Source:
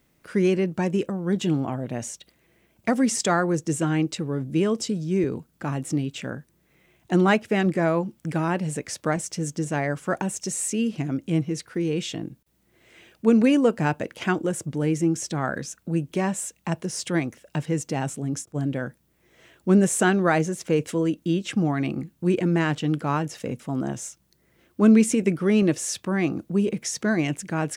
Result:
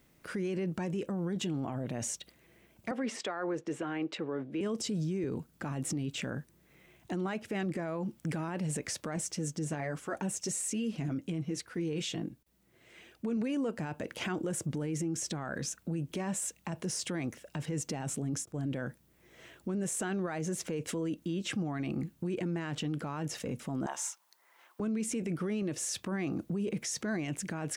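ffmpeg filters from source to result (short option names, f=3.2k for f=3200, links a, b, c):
-filter_complex "[0:a]asettb=1/sr,asplit=3[a][b][c];[a]atrim=end=2.914[d];[b]atrim=start=2.91:end=4.61,asetpts=PTS-STARTPTS,afade=t=in:d=0.004:c=qsin,afade=t=out:st=1.696:d=0.004:c=qsin,acrossover=split=300 3500:gain=0.126 1 0.0794[e][f][g];[e][f][g]amix=inputs=3:normalize=0[h];[c]atrim=start=4.606[i];[d][h]acrossfade=d=0.004:c1=hsin:c2=qsin[j];[j][i]acrossfade=d=0.004:c1=qsin:c2=hsin,asettb=1/sr,asplit=3[k][l][m];[k]atrim=end=9.314[n];[l]atrim=start=9.31:end=13.37,asetpts=PTS-STARTPTS,afade=t=in:d=0.004:c=qsin,afade=t=out:st=4.056:d=0.004:c=qsin,flanger=delay=2.4:depth=5.4:regen=-38:speed=1.3:shape=triangular[o];[m]atrim=start=13.366[p];[n][o]acrossfade=d=0.004:c1=hsin:c2=qsin[q];[q][p]acrossfade=d=0.004:c1=qsin:c2=hsin,asettb=1/sr,asplit=3[r][s][t];[r]atrim=end=23.864[u];[s]atrim=start=23.86:end=24.8,asetpts=PTS-STARTPTS,afade=t=in:d=0.004:c=qsin,afade=t=out:st=0.936:d=0.004:c=qsin,highpass=f=930:t=q:w=3.7[v];[t]atrim=start=24.796[w];[u][v]acrossfade=d=0.004:c1=hsin:c2=qsin[x];[x][w]acrossfade=d=0.004:c1=qsin:c2=hsin,acompressor=threshold=-24dB:ratio=6,alimiter=level_in=2.5dB:limit=-24dB:level=0:latency=1:release=24,volume=-2.5dB"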